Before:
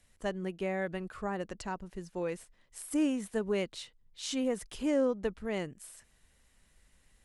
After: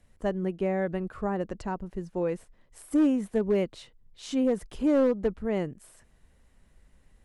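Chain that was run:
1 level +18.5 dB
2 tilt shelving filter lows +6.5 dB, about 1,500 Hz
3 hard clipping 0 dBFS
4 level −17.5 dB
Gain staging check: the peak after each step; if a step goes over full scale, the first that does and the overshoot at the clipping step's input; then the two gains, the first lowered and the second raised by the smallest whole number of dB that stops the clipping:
−1.0, +4.0, 0.0, −17.5 dBFS
step 2, 4.0 dB
step 1 +14.5 dB, step 4 −13.5 dB

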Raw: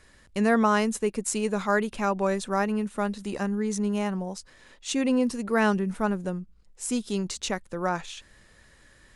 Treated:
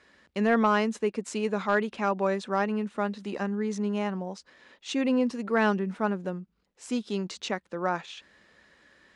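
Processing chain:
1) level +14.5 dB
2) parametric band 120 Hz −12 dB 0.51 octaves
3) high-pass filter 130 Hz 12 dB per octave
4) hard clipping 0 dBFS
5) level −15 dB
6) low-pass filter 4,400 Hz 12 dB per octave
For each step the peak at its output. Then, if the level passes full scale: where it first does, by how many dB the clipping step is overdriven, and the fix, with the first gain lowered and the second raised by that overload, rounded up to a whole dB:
+4.5, +4.5, +3.5, 0.0, −15.0, −14.5 dBFS
step 1, 3.5 dB
step 1 +10.5 dB, step 5 −11 dB

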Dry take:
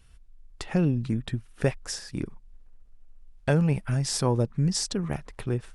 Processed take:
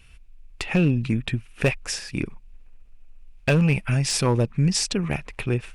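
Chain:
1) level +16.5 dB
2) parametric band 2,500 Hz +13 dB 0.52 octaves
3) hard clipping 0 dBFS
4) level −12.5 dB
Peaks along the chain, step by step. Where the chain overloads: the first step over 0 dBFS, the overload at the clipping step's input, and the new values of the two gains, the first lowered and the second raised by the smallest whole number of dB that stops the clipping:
+7.0, +8.5, 0.0, −12.5 dBFS
step 1, 8.5 dB
step 1 +7.5 dB, step 4 −3.5 dB

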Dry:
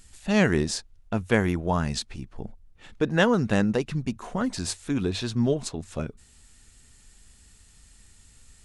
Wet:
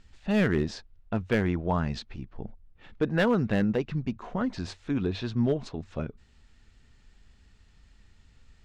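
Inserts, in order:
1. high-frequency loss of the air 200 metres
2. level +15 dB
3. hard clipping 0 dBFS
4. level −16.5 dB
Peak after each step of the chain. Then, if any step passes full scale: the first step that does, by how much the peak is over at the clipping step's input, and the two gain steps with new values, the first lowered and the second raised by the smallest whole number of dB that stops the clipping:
−7.0, +8.0, 0.0, −16.5 dBFS
step 2, 8.0 dB
step 2 +7 dB, step 4 −8.5 dB

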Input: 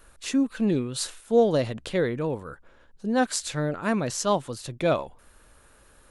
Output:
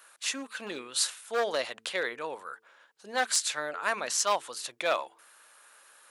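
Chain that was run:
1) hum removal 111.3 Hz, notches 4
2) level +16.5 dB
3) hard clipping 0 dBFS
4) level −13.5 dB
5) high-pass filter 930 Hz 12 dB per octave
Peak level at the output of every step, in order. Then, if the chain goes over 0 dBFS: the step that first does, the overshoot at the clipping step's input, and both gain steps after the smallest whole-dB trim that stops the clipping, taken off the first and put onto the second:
−8.0, +8.5, 0.0, −13.5, −11.0 dBFS
step 2, 8.5 dB
step 2 +7.5 dB, step 4 −4.5 dB

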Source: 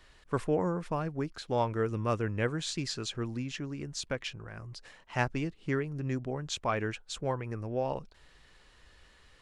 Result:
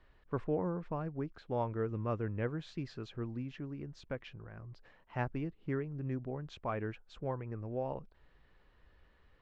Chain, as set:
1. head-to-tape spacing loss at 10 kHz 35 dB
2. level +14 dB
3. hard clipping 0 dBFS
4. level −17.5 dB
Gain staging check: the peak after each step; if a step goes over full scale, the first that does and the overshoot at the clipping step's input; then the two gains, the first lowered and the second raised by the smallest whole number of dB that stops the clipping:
−18.5, −4.5, −4.5, −22.0 dBFS
no step passes full scale

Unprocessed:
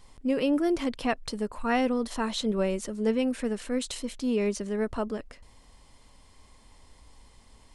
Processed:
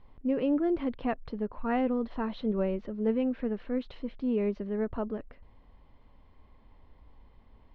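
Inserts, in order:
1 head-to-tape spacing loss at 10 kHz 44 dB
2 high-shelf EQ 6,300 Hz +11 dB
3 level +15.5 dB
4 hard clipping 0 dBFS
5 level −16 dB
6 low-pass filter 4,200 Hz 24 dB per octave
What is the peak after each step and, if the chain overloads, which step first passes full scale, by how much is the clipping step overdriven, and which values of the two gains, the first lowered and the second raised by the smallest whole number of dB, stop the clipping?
−17.5, −17.5, −2.0, −2.0, −18.0, −18.0 dBFS
no step passes full scale

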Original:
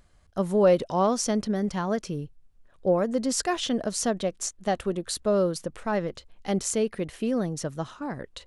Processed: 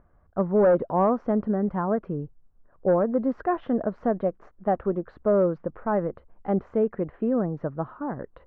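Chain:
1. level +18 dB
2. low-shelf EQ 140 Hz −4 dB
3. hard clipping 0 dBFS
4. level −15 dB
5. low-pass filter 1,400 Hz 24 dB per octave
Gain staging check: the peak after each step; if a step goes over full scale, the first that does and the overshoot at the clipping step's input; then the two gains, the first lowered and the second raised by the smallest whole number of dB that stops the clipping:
+8.5, +8.0, 0.0, −15.0, −13.5 dBFS
step 1, 8.0 dB
step 1 +10 dB, step 4 −7 dB

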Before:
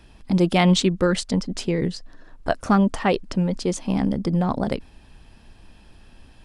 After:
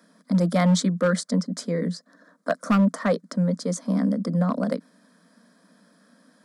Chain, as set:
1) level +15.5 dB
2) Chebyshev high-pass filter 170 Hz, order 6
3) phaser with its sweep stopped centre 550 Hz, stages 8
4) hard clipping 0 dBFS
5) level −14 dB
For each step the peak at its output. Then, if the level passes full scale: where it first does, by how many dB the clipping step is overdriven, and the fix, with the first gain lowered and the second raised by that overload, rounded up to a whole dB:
+10.5, +10.5, +8.0, 0.0, −14.0 dBFS
step 1, 8.0 dB
step 1 +7.5 dB, step 5 −6 dB

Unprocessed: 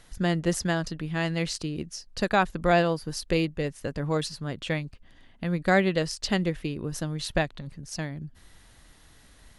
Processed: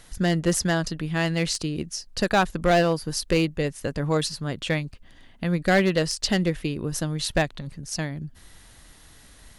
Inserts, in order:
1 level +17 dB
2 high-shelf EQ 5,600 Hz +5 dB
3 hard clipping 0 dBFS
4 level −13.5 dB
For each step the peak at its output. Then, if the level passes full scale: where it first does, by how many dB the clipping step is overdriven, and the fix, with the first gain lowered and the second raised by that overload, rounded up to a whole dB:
+7.5, +7.5, 0.0, −13.5 dBFS
step 1, 7.5 dB
step 1 +9 dB, step 4 −5.5 dB

